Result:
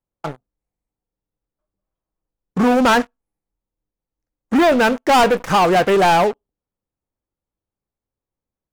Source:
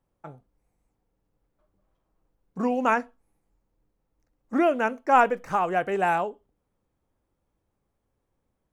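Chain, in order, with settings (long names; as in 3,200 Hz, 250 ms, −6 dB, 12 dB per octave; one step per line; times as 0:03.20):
leveller curve on the samples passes 5
level −2 dB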